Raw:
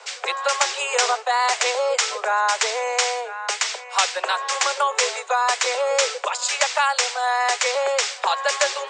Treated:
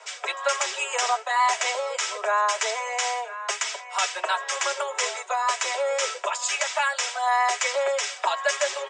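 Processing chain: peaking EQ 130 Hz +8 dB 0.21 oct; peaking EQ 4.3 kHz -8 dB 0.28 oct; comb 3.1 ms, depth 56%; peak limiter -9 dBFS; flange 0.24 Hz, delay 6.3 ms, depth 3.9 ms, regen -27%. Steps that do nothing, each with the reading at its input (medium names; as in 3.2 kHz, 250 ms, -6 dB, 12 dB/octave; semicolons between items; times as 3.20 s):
peaking EQ 130 Hz: input has nothing below 360 Hz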